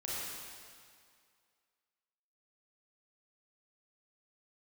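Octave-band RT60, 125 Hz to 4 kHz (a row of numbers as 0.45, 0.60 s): 1.9, 2.0, 2.1, 2.2, 2.1, 2.0 s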